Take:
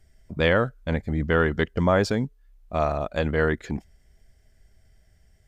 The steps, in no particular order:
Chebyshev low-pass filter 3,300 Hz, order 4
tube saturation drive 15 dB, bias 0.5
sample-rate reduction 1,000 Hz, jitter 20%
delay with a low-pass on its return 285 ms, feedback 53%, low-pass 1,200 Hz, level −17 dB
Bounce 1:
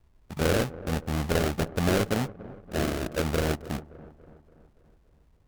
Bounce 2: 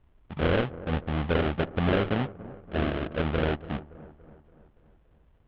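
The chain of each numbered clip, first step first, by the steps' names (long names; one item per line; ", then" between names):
Chebyshev low-pass filter, then sample-rate reduction, then delay with a low-pass on its return, then tube saturation
sample-rate reduction, then delay with a low-pass on its return, then tube saturation, then Chebyshev low-pass filter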